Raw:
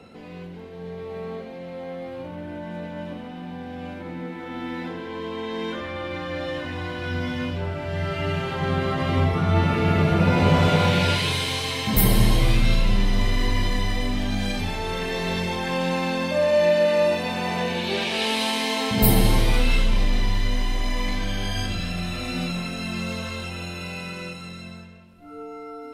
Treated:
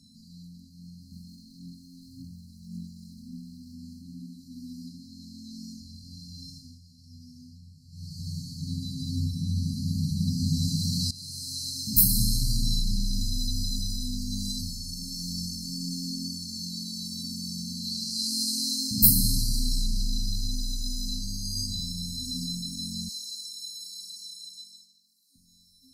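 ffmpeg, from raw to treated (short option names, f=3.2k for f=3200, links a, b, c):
-filter_complex "[0:a]asettb=1/sr,asplit=3[a][b][c];[a]atrim=end=1.124[d];[b]atrim=start=1.12:end=3.73,asetpts=PTS-STARTPTS,afade=t=in:d=0.004:c=qsin,afade=t=out:st=2.606:d=0.004:c=qsin,aphaser=in_gain=1:out_gain=1:delay=3:decay=0.5:speed=1.8:type=triangular[e];[c]atrim=start=3.726[f];[d][e]acrossfade=d=0.004:c1=hsin:c2=qsin[g];[g][f]acrossfade=d=0.004:c1=qsin:c2=hsin,asettb=1/sr,asplit=3[h][i][j];[h]atrim=end=23.094[k];[i]atrim=start=23.09:end=25.36,asetpts=PTS-STARTPTS,afade=t=in:d=0.004:c=qsin,afade=t=out:st=2.266:d=0.004:c=qsin,highpass=870[l];[j]atrim=start=25.356[m];[k][l]acrossfade=d=0.004:c1=hsin:c2=qsin[n];[n][m]acrossfade=d=0.004:c1=qsin:c2=hsin,asplit=4[o][p][q][r];[o]atrim=end=6.8,asetpts=PTS-STARTPTS,afade=t=out:st=6.49:d=0.31:silence=0.223872[s];[p]atrim=start=6.8:end=7.91,asetpts=PTS-STARTPTS,volume=-13dB[t];[q]atrim=start=7.91:end=11.11,asetpts=PTS-STARTPTS,afade=t=in:d=0.31:silence=0.223872,afade=t=out:st=3.196:d=0.004:c=hsin:silence=0.112202[u];[r]atrim=start=11.11,asetpts=PTS-STARTPTS,afade=t=in:d=1.43:c=qsin:silence=0.112202[v];[s][t][u][v]concat=n=4:v=0:a=1,afftfilt=real='re*(1-between(b*sr/4096,270,4000))':imag='im*(1-between(b*sr/4096,270,4000))':win_size=4096:overlap=0.75,tiltshelf=f=970:g=-6.5,volume=-1dB"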